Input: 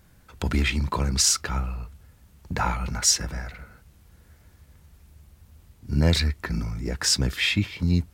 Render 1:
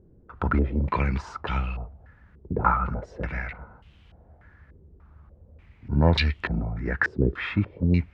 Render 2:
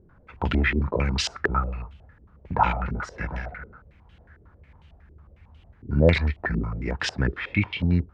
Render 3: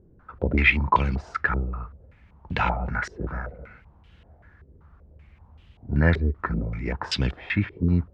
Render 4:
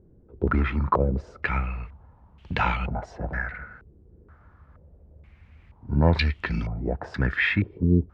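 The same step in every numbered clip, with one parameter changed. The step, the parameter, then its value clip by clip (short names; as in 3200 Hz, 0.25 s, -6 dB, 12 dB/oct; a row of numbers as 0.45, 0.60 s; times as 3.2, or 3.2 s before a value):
stepped low-pass, rate: 3.4, 11, 5.2, 2.1 Hz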